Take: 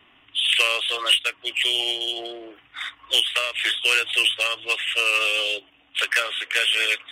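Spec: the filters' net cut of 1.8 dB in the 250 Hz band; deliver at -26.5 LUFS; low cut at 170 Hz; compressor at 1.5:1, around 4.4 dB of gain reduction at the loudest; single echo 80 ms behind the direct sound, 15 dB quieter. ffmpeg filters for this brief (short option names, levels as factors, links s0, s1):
-af "highpass=170,equalizer=f=250:t=o:g=-3,acompressor=threshold=0.0447:ratio=1.5,aecho=1:1:80:0.178,volume=0.794"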